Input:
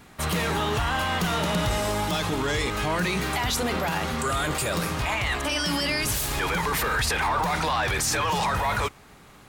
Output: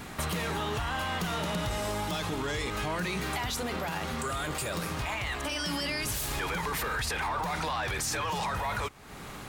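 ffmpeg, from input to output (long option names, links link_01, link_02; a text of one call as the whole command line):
ffmpeg -i in.wav -filter_complex "[0:a]acompressor=threshold=-43dB:ratio=3,asettb=1/sr,asplit=3[link_01][link_02][link_03];[link_01]atrim=end=3.464[link_04];[link_02]atrim=start=3.46:end=5.59,asetpts=PTS-STARTPTS,afade=type=in:duration=0.004:curve=qsin,afade=type=out:start_time=2.126:duration=0.004:curve=qsin,aeval=exprs='sgn(val(0))*max(abs(val(0))-0.00106,0)':channel_layout=same[link_05];[link_03]atrim=start=5.586[link_06];[link_04][link_05]acrossfade=duration=0.004:curve1=hsin:curve2=qsin[link_07];[link_07][link_06]acrossfade=duration=0.004:curve1=qsin:curve2=hsin,volume=8dB" out.wav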